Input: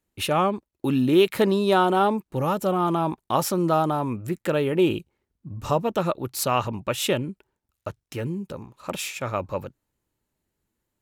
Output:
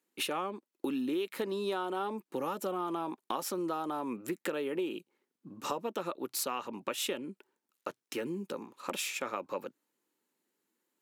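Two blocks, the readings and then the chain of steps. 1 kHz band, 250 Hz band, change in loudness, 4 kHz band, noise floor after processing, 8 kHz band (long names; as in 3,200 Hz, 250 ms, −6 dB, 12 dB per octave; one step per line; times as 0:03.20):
−12.5 dB, −12.0 dB, −12.0 dB, −8.5 dB, below −85 dBFS, −6.5 dB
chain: high-pass filter 240 Hz 24 dB per octave
parametric band 720 Hz −3 dB 0.56 octaves
notch filter 620 Hz, Q 12
downward compressor 6 to 1, threshold −32 dBFS, peak gain reduction 17 dB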